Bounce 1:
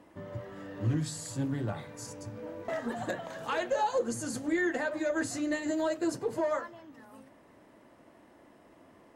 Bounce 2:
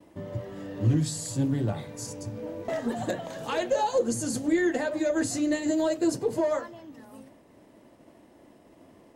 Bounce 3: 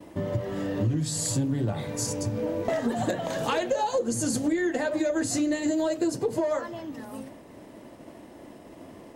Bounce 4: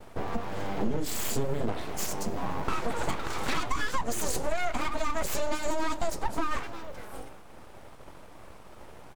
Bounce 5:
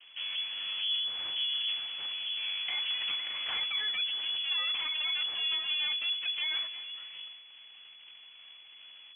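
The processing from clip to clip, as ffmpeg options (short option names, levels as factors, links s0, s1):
-af "agate=range=0.0224:threshold=0.00178:ratio=3:detection=peak,equalizer=f=1400:w=0.89:g=-8,volume=2.11"
-af "acompressor=threshold=0.0251:ratio=6,volume=2.66"
-filter_complex "[0:a]aeval=exprs='abs(val(0))':c=same,asplit=2[s0][s1];[s1]adelay=291.5,volume=0.0794,highshelf=f=4000:g=-6.56[s2];[s0][s2]amix=inputs=2:normalize=0"
-af "lowpass=f=2900:t=q:w=0.5098,lowpass=f=2900:t=q:w=0.6013,lowpass=f=2900:t=q:w=0.9,lowpass=f=2900:t=q:w=2.563,afreqshift=-3400,volume=0.473"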